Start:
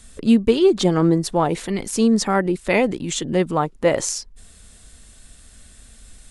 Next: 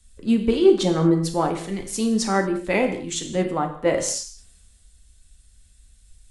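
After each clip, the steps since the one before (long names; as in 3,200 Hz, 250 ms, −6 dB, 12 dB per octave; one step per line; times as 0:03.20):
convolution reverb, pre-delay 3 ms, DRR 4 dB
multiband upward and downward expander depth 40%
level −4.5 dB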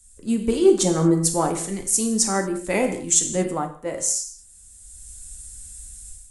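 high shelf with overshoot 5,400 Hz +12 dB, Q 1.5
automatic gain control gain up to 12 dB
level −4 dB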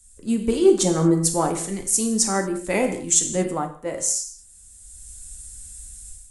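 no processing that can be heard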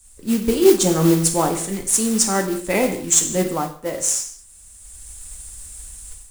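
noise that follows the level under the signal 15 dB
level +2.5 dB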